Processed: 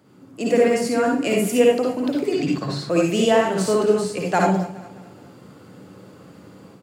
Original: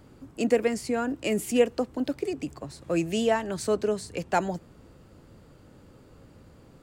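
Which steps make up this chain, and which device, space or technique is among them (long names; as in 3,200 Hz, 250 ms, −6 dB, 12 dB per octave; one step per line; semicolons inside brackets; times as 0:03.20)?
far laptop microphone (convolution reverb RT60 0.35 s, pre-delay 51 ms, DRR −2 dB; high-pass filter 120 Hz 24 dB per octave; automatic gain control gain up to 8 dB)
0:02.32–0:02.90: graphic EQ with 15 bands 160 Hz +11 dB, 1,600 Hz +9 dB, 4,000 Hz +10 dB, 10,000 Hz −6 dB
repeating echo 209 ms, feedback 45%, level −17.5 dB
level −2.5 dB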